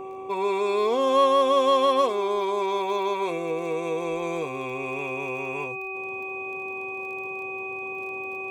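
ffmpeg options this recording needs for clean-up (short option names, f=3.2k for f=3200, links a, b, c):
-af "adeclick=t=4,bandreject=f=382.3:t=h:w=4,bandreject=f=764.6:t=h:w=4,bandreject=f=1.1469k:t=h:w=4,bandreject=f=2.5k:w=30"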